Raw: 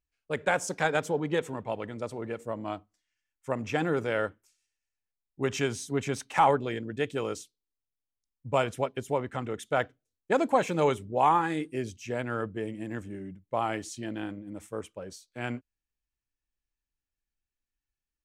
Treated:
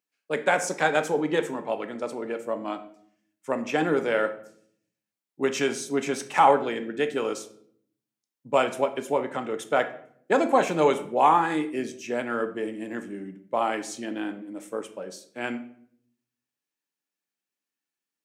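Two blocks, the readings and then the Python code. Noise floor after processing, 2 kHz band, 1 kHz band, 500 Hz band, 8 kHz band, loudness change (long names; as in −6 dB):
below −85 dBFS, +4.0 dB, +4.5 dB, +4.5 dB, +4.0 dB, +4.0 dB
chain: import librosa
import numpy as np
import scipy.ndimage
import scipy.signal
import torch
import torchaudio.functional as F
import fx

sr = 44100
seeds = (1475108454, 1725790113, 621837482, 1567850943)

y = scipy.signal.sosfilt(scipy.signal.butter(4, 190.0, 'highpass', fs=sr, output='sos'), x)
y = fx.room_shoebox(y, sr, seeds[0], volume_m3=100.0, walls='mixed', distance_m=0.32)
y = y * librosa.db_to_amplitude(3.5)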